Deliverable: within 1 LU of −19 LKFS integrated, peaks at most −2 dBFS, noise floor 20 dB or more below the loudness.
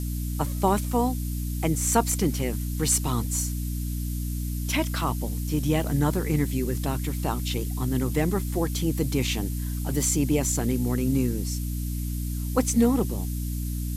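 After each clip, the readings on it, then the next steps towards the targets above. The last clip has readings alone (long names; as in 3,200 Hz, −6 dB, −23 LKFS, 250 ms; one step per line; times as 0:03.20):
mains hum 60 Hz; hum harmonics up to 300 Hz; level of the hum −27 dBFS; background noise floor −30 dBFS; target noise floor −47 dBFS; integrated loudness −26.5 LKFS; sample peak −7.5 dBFS; target loudness −19.0 LKFS
→ mains-hum notches 60/120/180/240/300 Hz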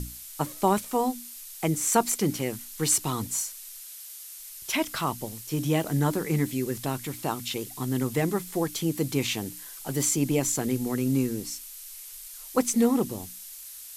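mains hum none found; background noise floor −43 dBFS; target noise floor −48 dBFS
→ noise reduction from a noise print 6 dB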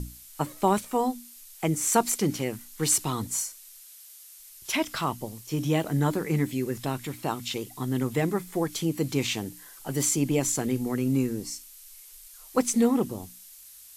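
background noise floor −49 dBFS; integrated loudness −27.5 LKFS; sample peak −9.0 dBFS; target loudness −19.0 LKFS
→ level +8.5 dB
brickwall limiter −2 dBFS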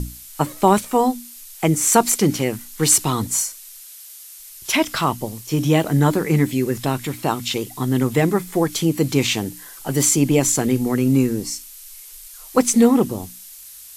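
integrated loudness −19.0 LKFS; sample peak −2.0 dBFS; background noise floor −41 dBFS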